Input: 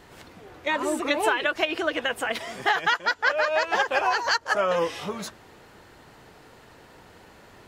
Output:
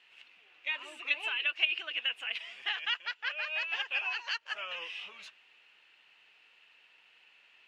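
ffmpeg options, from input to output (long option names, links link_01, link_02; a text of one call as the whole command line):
ffmpeg -i in.wav -af "bandpass=frequency=2700:width_type=q:width=7:csg=0,volume=4dB" out.wav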